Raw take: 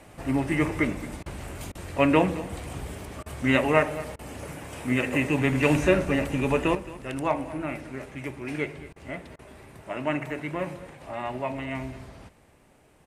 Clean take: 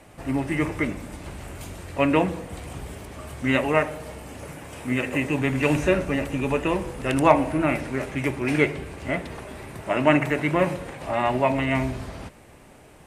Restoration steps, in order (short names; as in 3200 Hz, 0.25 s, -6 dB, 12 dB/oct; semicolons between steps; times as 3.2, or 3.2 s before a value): interpolate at 1.23/1.72/3.23/4.16/8.93/9.36, 29 ms; inverse comb 0.22 s -17.5 dB; gain 0 dB, from 6.75 s +9.5 dB